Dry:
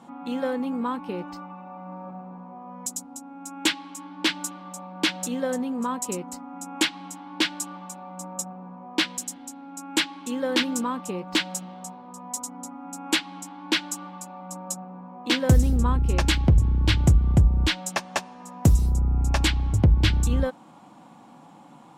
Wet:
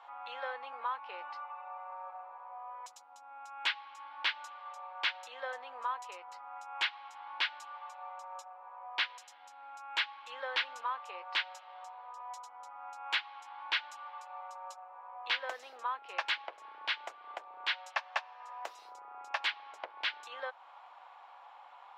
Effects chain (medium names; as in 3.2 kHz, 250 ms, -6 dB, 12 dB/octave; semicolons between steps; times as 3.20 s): Bessel high-pass 1.1 kHz, order 6; in parallel at +1.5 dB: compression, threshold -44 dBFS, peak gain reduction 22 dB; on the sum: distance through air 320 m; trim -2 dB